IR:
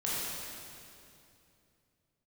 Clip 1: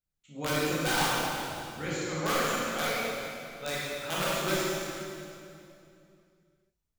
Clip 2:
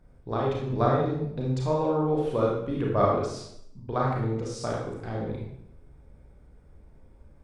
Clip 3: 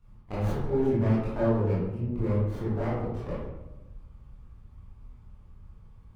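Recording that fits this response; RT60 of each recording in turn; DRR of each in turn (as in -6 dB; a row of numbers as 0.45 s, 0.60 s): 1; 2.7 s, 0.70 s, 1.0 s; -8.5 dB, -3.5 dB, -10.0 dB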